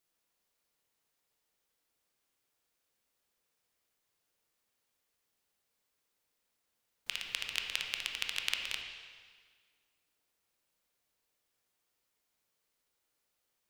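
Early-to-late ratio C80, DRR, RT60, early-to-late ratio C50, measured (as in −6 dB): 5.0 dB, 2.0 dB, 1.7 s, 4.0 dB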